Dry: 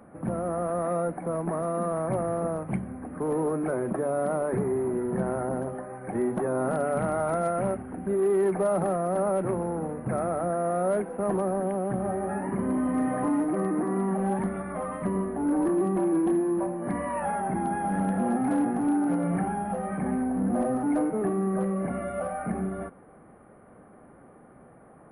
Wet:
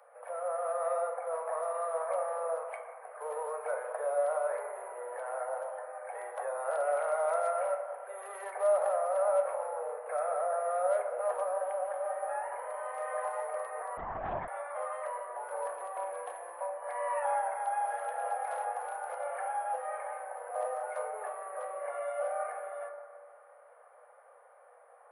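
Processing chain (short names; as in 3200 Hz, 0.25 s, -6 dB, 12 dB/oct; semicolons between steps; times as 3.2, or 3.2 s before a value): steep high-pass 480 Hz 96 dB/oct; reverb RT60 2.2 s, pre-delay 8 ms, DRR 4 dB; 13.97–14.48 LPC vocoder at 8 kHz whisper; gain -4 dB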